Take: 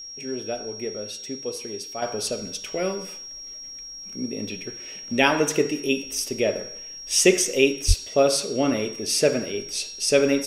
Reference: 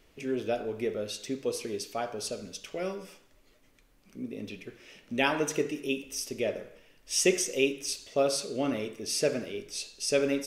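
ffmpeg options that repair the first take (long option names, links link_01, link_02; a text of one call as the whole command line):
ffmpeg -i in.wav -filter_complex "[0:a]bandreject=frequency=5600:width=30,asplit=3[link_01][link_02][link_03];[link_01]afade=type=out:start_time=7.87:duration=0.02[link_04];[link_02]highpass=frequency=140:width=0.5412,highpass=frequency=140:width=1.3066,afade=type=in:start_time=7.87:duration=0.02,afade=type=out:start_time=7.99:duration=0.02[link_05];[link_03]afade=type=in:start_time=7.99:duration=0.02[link_06];[link_04][link_05][link_06]amix=inputs=3:normalize=0,asetnsamples=nb_out_samples=441:pad=0,asendcmd='2.02 volume volume -7.5dB',volume=0dB" out.wav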